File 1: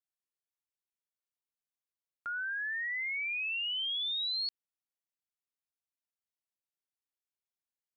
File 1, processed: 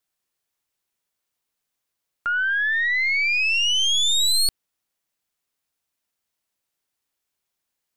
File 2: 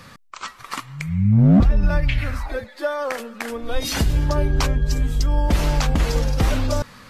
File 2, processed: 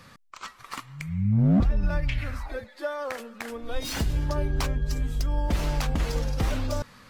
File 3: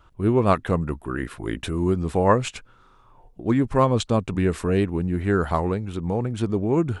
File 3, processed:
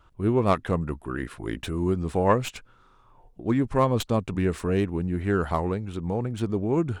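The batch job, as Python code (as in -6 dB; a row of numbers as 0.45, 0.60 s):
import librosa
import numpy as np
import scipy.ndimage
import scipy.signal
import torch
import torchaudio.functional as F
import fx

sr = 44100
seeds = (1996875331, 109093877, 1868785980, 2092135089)

y = fx.tracing_dist(x, sr, depth_ms=0.047)
y = y * 10.0 ** (-26 / 20.0) / np.sqrt(np.mean(np.square(y)))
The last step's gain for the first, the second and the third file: +14.0, -7.0, -3.0 dB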